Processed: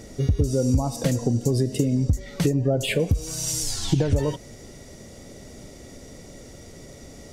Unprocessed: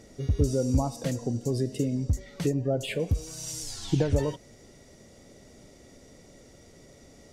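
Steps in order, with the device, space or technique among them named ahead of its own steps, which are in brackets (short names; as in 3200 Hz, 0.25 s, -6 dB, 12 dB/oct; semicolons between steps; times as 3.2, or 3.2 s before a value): ASMR close-microphone chain (low shelf 150 Hz +4 dB; compressor 6:1, threshold -25 dBFS, peak gain reduction 10 dB; high shelf 9700 Hz +5.5 dB); gain +8 dB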